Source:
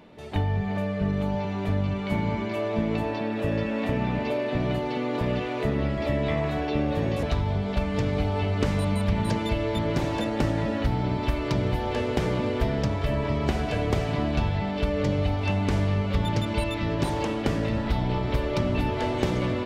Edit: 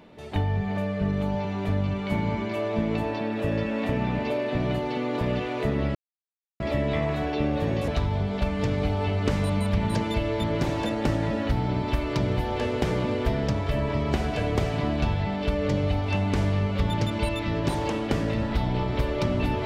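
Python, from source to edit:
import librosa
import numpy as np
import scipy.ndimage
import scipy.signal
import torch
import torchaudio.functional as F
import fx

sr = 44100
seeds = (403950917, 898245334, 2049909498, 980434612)

y = fx.edit(x, sr, fx.insert_silence(at_s=5.95, length_s=0.65), tone=tone)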